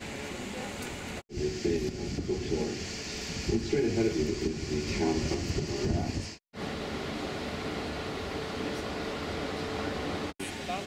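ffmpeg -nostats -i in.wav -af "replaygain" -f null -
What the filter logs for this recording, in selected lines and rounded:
track_gain = +12.9 dB
track_peak = 0.109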